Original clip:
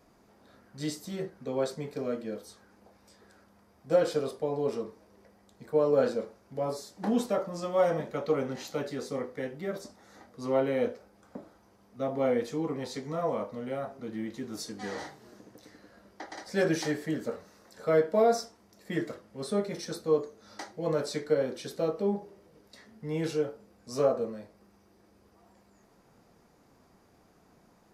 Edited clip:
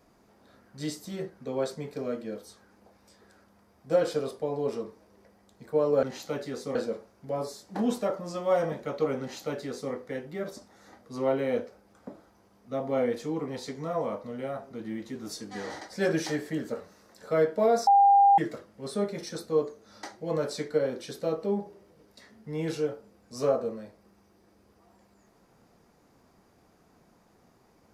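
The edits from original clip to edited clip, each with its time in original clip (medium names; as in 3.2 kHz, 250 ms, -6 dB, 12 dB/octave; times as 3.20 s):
8.48–9.20 s: copy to 6.03 s
15.08–16.36 s: delete
18.43–18.94 s: bleep 800 Hz -15 dBFS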